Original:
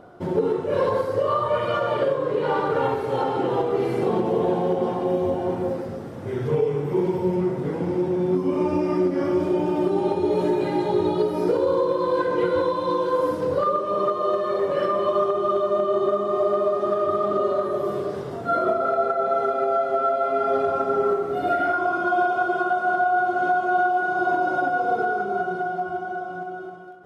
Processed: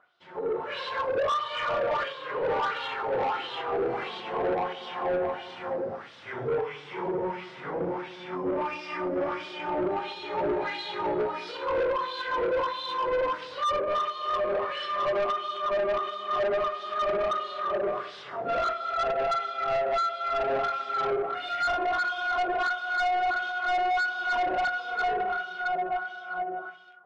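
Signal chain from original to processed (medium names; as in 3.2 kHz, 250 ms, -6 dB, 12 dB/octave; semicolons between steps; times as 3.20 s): peaking EQ 380 Hz -10 dB 2.7 oct; level rider gain up to 13.5 dB; wah-wah 1.5 Hz 480–3800 Hz, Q 2.2; saturation -23 dBFS, distortion -9 dB; distance through air 79 m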